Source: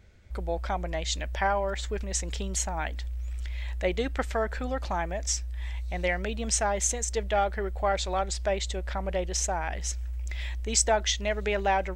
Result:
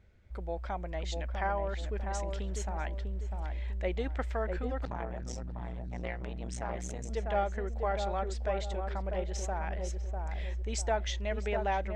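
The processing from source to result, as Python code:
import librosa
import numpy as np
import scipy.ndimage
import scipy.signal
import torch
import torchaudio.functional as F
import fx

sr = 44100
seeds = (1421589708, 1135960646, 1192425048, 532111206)

y = fx.high_shelf(x, sr, hz=4200.0, db=-11.5)
y = fx.echo_filtered(y, sr, ms=648, feedback_pct=42, hz=900.0, wet_db=-3.5)
y = fx.transformer_sat(y, sr, knee_hz=380.0, at=(4.85, 7.1))
y = F.gain(torch.from_numpy(y), -6.0).numpy()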